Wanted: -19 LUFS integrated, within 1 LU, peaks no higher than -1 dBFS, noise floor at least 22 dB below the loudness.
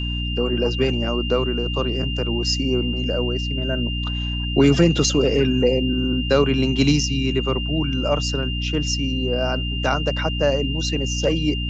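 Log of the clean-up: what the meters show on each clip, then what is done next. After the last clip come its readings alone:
hum 60 Hz; harmonics up to 300 Hz; hum level -23 dBFS; steady tone 2800 Hz; tone level -28 dBFS; loudness -21.0 LUFS; peak -4.0 dBFS; loudness target -19.0 LUFS
-> notches 60/120/180/240/300 Hz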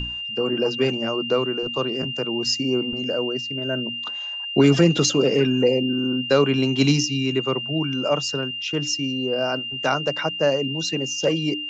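hum none; steady tone 2800 Hz; tone level -28 dBFS
-> notch 2800 Hz, Q 30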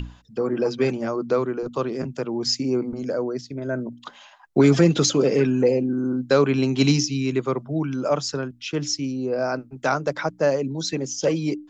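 steady tone none; loudness -23.0 LUFS; peak -5.5 dBFS; loudness target -19.0 LUFS
-> gain +4 dB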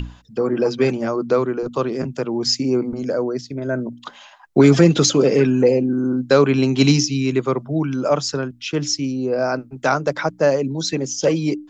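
loudness -19.0 LUFS; peak -1.5 dBFS; noise floor -46 dBFS

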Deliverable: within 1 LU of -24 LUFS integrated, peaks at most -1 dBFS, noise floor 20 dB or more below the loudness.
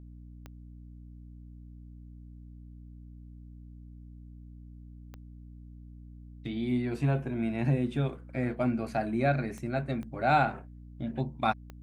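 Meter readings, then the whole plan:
clicks 5; hum 60 Hz; harmonics up to 300 Hz; hum level -45 dBFS; loudness -30.5 LUFS; peak -12.5 dBFS; loudness target -24.0 LUFS
-> de-click; de-hum 60 Hz, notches 5; gain +6.5 dB

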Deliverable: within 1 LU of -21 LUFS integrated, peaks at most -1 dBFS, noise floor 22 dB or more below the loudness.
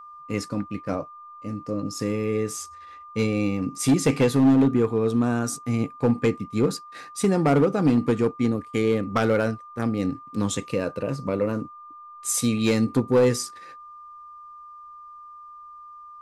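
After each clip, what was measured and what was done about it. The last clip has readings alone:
clipped 1.0%; flat tops at -13.0 dBFS; steady tone 1200 Hz; tone level -41 dBFS; loudness -24.0 LUFS; peak -13.0 dBFS; loudness target -21.0 LUFS
-> clip repair -13 dBFS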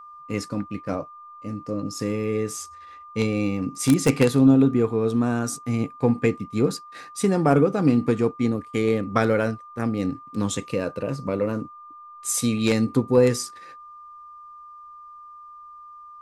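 clipped 0.0%; steady tone 1200 Hz; tone level -41 dBFS
-> notch 1200 Hz, Q 30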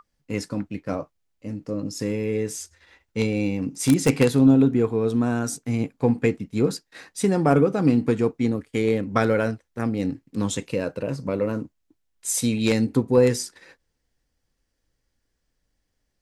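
steady tone none; loudness -23.0 LUFS; peak -4.0 dBFS; loudness target -21.0 LUFS
-> gain +2 dB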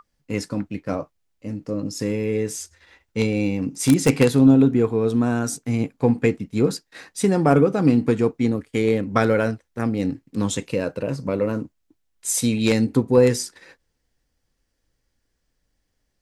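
loudness -21.0 LUFS; peak -2.0 dBFS; noise floor -74 dBFS

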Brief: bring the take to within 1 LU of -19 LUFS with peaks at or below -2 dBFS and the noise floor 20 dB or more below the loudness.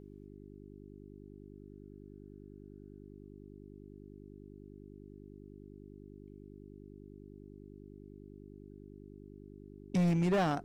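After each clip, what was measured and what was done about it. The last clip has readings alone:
clipped 0.9%; flat tops at -25.5 dBFS; hum 50 Hz; harmonics up to 400 Hz; hum level -50 dBFS; loudness -30.5 LUFS; peak -25.5 dBFS; loudness target -19.0 LUFS
-> clip repair -25.5 dBFS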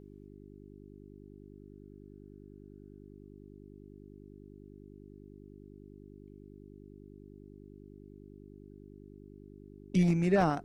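clipped 0.0%; hum 50 Hz; harmonics up to 400 Hz; hum level -50 dBFS
-> de-hum 50 Hz, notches 8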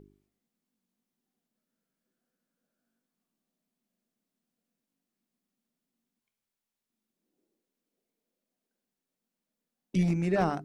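hum none; loudness -28.5 LUFS; peak -15.5 dBFS; loudness target -19.0 LUFS
-> gain +9.5 dB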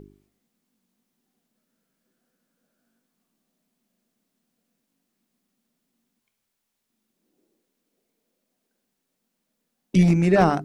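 loudness -19.0 LUFS; peak -6.0 dBFS; noise floor -79 dBFS

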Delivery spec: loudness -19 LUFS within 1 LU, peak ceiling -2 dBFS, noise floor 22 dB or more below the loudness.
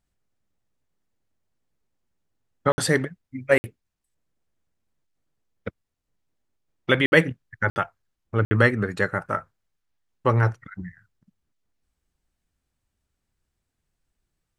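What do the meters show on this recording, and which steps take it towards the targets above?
dropouts 5; longest dropout 60 ms; loudness -23.0 LUFS; peak -3.0 dBFS; loudness target -19.0 LUFS
-> interpolate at 2.72/3.58/7.06/7.7/8.45, 60 ms; gain +4 dB; limiter -2 dBFS

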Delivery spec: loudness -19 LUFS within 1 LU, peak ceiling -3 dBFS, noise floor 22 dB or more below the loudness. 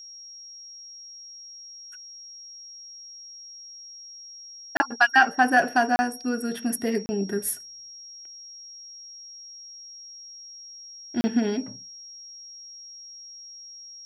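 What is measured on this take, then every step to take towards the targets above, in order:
dropouts 4; longest dropout 30 ms; steady tone 5600 Hz; tone level -41 dBFS; loudness -24.0 LUFS; peak -6.0 dBFS; loudness target -19.0 LUFS
-> interpolate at 4.77/5.96/7.06/11.21, 30 ms; notch 5600 Hz, Q 30; gain +5 dB; limiter -3 dBFS

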